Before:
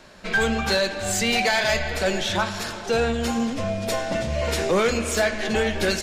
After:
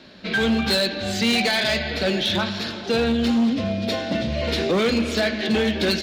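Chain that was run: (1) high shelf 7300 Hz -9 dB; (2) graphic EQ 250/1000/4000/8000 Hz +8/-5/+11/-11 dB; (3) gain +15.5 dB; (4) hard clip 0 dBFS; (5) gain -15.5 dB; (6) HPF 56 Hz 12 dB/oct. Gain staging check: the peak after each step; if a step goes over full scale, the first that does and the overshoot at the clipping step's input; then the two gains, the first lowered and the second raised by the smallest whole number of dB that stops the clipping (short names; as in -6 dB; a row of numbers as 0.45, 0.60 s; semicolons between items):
-13.5, -8.0, +7.5, 0.0, -15.5, -12.0 dBFS; step 3, 7.5 dB; step 3 +7.5 dB, step 5 -7.5 dB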